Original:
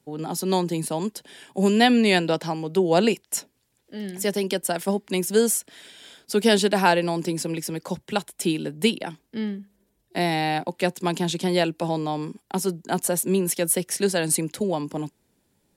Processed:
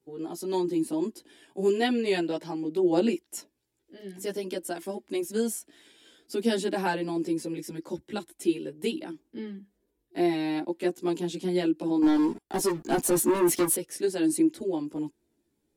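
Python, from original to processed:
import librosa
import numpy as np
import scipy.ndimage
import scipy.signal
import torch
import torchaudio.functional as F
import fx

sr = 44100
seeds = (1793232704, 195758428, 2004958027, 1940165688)

y = fx.peak_eq(x, sr, hz=330.0, db=14.0, octaves=0.52)
y = fx.leveller(y, sr, passes=3, at=(12.02, 13.75))
y = fx.chorus_voices(y, sr, voices=4, hz=0.13, base_ms=15, depth_ms=2.4, mix_pct=55)
y = y * librosa.db_to_amplitude(-8.0)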